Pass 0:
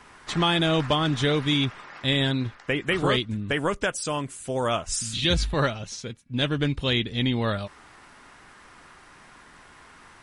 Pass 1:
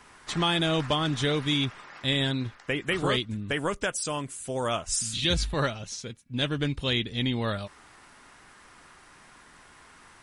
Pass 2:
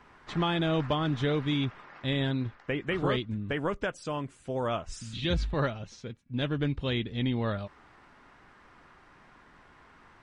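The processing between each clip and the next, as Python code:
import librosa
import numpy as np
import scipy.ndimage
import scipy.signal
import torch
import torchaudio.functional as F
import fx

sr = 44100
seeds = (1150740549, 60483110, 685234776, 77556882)

y1 = fx.high_shelf(x, sr, hz=5900.0, db=6.5)
y1 = y1 * 10.0 ** (-3.5 / 20.0)
y2 = fx.spacing_loss(y1, sr, db_at_10k=25)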